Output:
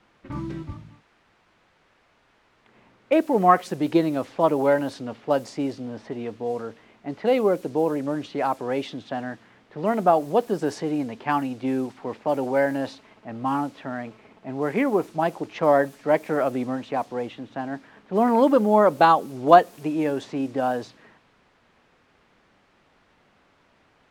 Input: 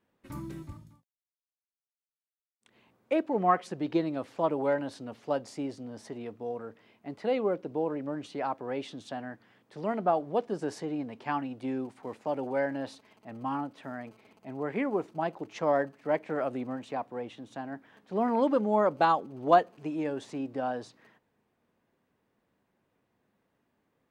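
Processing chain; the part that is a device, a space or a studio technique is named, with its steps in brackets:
cassette deck with a dynamic noise filter (white noise bed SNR 28 dB; low-pass that shuts in the quiet parts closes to 1,800 Hz, open at −27 dBFS)
level +8 dB

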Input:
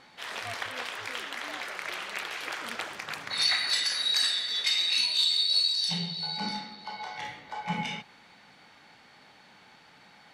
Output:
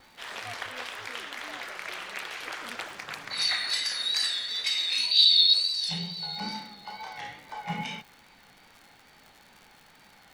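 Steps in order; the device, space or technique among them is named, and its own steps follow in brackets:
vinyl LP (tape wow and flutter; surface crackle 120 per second −40 dBFS; pink noise bed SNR 34 dB)
0:05.11–0:05.54: octave-band graphic EQ 500/1,000/4,000/8,000 Hz +5/−8/+11/−8 dB
level −1.5 dB

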